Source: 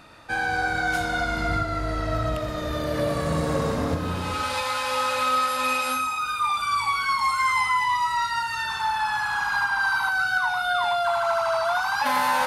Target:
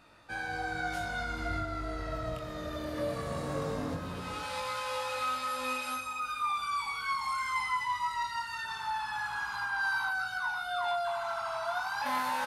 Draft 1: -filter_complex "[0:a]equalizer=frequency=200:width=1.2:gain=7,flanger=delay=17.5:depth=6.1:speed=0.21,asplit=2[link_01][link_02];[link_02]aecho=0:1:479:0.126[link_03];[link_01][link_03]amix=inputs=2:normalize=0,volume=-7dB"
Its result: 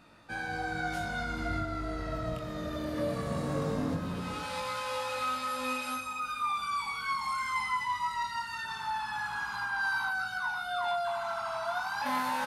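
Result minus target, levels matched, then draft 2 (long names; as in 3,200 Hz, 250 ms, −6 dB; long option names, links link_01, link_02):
250 Hz band +4.0 dB
-filter_complex "[0:a]flanger=delay=17.5:depth=6.1:speed=0.21,asplit=2[link_01][link_02];[link_02]aecho=0:1:479:0.126[link_03];[link_01][link_03]amix=inputs=2:normalize=0,volume=-7dB"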